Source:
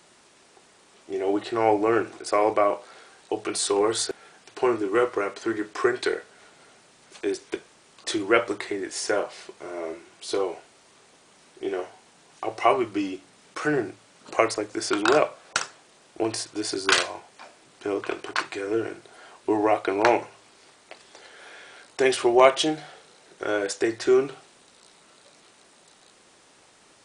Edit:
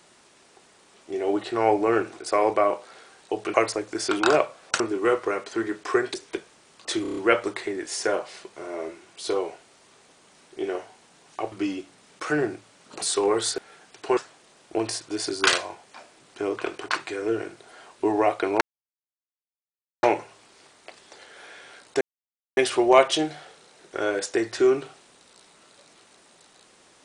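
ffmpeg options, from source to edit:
-filter_complex "[0:a]asplit=14[a][b][c][d][e][f][g][h][i][j][k][l][m][n];[a]atrim=end=3.542[o];[b]atrim=start=14.358:end=15.622[p];[c]atrim=start=4.698:end=6.042[q];[d]atrim=start=7.328:end=8.242[r];[e]atrim=start=8.208:end=8.242[s];[f]atrim=start=8.208:end=8.242[t];[g]atrim=start=8.208:end=8.242[u];[h]atrim=start=8.208:end=8.242[v];[i]atrim=start=8.208:end=12.562[w];[j]atrim=start=12.868:end=14.362[x];[k]atrim=start=3.538:end=4.702[y];[l]atrim=start=15.618:end=20.06,asetpts=PTS-STARTPTS,afade=t=out:st=4.438:d=0.004:c=hsin,apad=pad_dur=1.42[z];[m]atrim=start=20.06:end=22.04,asetpts=PTS-STARTPTS,afade=t=in:d=0.004:c=hsin,afade=t=out:st=1.976:d=0.004:c=hsin,apad=pad_dur=0.56[aa];[n]atrim=start=22.04,asetpts=PTS-STARTPTS,afade=t=in:d=0.004:c=hsin[ab];[o][p]acrossfade=d=0.004:c1=hsin:c2=hsin[ac];[ac][q]acrossfade=d=0.004:c1=hsin:c2=hsin[ad];[ad][r]acrossfade=d=0.004:c1=hsin:c2=hsin[ae];[ae][s]acrossfade=d=0.004:c1=hsin:c2=hsin[af];[af][t]acrossfade=d=0.004:c1=hsin:c2=hsin[ag];[ag][u]acrossfade=d=0.004:c1=hsin:c2=hsin[ah];[ah][v]acrossfade=d=0.004:c1=hsin:c2=hsin[ai];[ai][w]acrossfade=d=0.004:c1=hsin:c2=hsin[aj];[aj][x]acrossfade=d=0.004:c1=hsin:c2=hsin[ak];[ak][y]acrossfade=d=0.004:c1=hsin:c2=hsin[al];[z][aa][ab]concat=n=3:v=0:a=1[am];[al][am]acrossfade=d=0.004:c1=hsin:c2=hsin"

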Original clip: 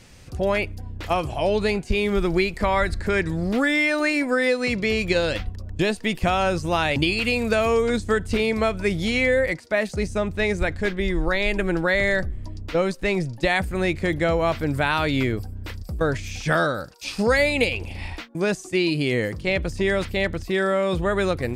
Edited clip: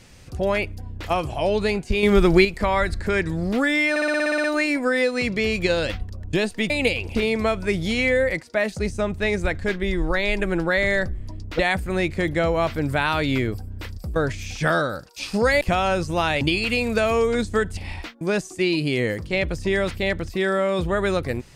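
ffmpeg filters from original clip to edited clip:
-filter_complex "[0:a]asplit=17[a][b][c][d][e][f][g][h][i][j][k][l][m][n][o][p][q];[a]atrim=end=2.032[r];[b]atrim=start=2.028:end=2.452,asetpts=PTS-STARTPTS,volume=6dB[s];[c]atrim=start=2.448:end=3.962[t];[d]atrim=start=3.898:end=3.962[u];[e]atrim=start=3.898:end=3.962[v];[f]atrim=start=3.898:end=3.962[w];[g]atrim=start=3.898:end=3.962[x];[h]atrim=start=3.898:end=3.962[y];[i]atrim=start=3.898:end=3.962[z];[j]atrim=start=3.898:end=3.962[aa];[k]atrim=start=3.898:end=3.962[ab];[l]atrim=start=3.898:end=6.162[ac];[m]atrim=start=17.458:end=17.912[ad];[n]atrim=start=8.318:end=12.762[ae];[o]atrim=start=13.438:end=17.462[af];[p]atrim=start=6.158:end=8.322[ag];[q]atrim=start=17.908[ah];[r][s]acrossfade=d=0.004:c1=hsin:c2=hsin[ai];[ai][t]acrossfade=d=0.004:c1=hsin:c2=hsin[aj];[aj][u]acrossfade=d=0.004:c1=hsin:c2=hsin[ak];[ak][v]acrossfade=d=0.004:c1=hsin:c2=hsin[al];[al][w]acrossfade=d=0.004:c1=hsin:c2=hsin[am];[am][x]acrossfade=d=0.004:c1=hsin:c2=hsin[an];[an][y]acrossfade=d=0.004:c1=hsin:c2=hsin[ao];[ao][z]acrossfade=d=0.004:c1=hsin:c2=hsin[ap];[ap][aa]acrossfade=d=0.004:c1=hsin:c2=hsin[aq];[aq][ab]acrossfade=d=0.004:c1=hsin:c2=hsin[ar];[ar][ac]acrossfade=d=0.004:c1=hsin:c2=hsin[as];[as][ad]acrossfade=d=0.004:c1=hsin:c2=hsin[at];[at][ae]acrossfade=d=0.004:c1=hsin:c2=hsin[au];[au][af]acrossfade=d=0.004:c1=hsin:c2=hsin[av];[av][ag]acrossfade=d=0.004:c1=hsin:c2=hsin[aw];[aw][ah]acrossfade=d=0.004:c1=hsin:c2=hsin"

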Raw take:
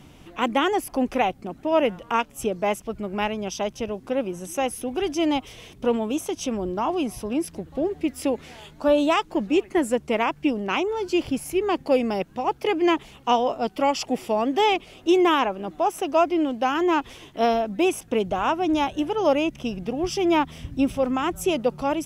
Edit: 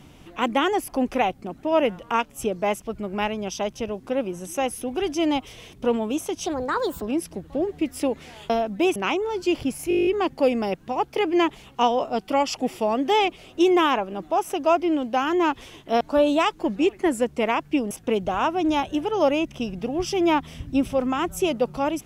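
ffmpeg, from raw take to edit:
-filter_complex "[0:a]asplit=16[a][b][c][d][e][f][g][h][i][j][k][l][m][n][o][p];[a]atrim=end=6.464[q];[b]atrim=start=6.46:end=7.24,asetpts=PTS-STARTPTS,asetrate=61740,aresample=44100[r];[c]atrim=start=7.236:end=8.722[s];[d]atrim=start=17.488:end=17.952[t];[e]atrim=start=10.618:end=11.572[u];[f]atrim=start=11.548:end=11.572[v];[g]atrim=start=11.548:end=11.572[w];[h]atrim=start=11.548:end=11.572[x];[i]atrim=start=11.548:end=11.572[y];[j]atrim=start=11.548:end=11.572[z];[k]atrim=start=11.548:end=11.572[aa];[l]atrim=start=11.548:end=11.572[ab];[m]atrim=start=11.548:end=11.572[ac];[n]atrim=start=11.548:end=17.492[ad];[o]atrim=start=8.718:end=10.622[ae];[p]atrim=start=17.948[af];[q][r]acrossfade=d=0.004:c1=hsin:c2=hsin[ag];[ag][s]acrossfade=d=0.004:c1=hsin:c2=hsin[ah];[ah][t]acrossfade=d=0.004:c1=hsin:c2=hsin[ai];[ai][u]acrossfade=d=0.004:c1=hsin:c2=hsin[aj];[aj][v]acrossfade=d=0.004:c1=hsin:c2=hsin[ak];[ak][w]acrossfade=d=0.004:c1=hsin:c2=hsin[al];[al][x]acrossfade=d=0.004:c1=hsin:c2=hsin[am];[am][y]acrossfade=d=0.004:c1=hsin:c2=hsin[an];[an][z]acrossfade=d=0.004:c1=hsin:c2=hsin[ao];[ao][aa]acrossfade=d=0.004:c1=hsin:c2=hsin[ap];[ap][ab]acrossfade=d=0.004:c1=hsin:c2=hsin[aq];[aq][ac]acrossfade=d=0.004:c1=hsin:c2=hsin[ar];[ar][ad]acrossfade=d=0.004:c1=hsin:c2=hsin[as];[as][ae]acrossfade=d=0.004:c1=hsin:c2=hsin[at];[at][af]acrossfade=d=0.004:c1=hsin:c2=hsin"

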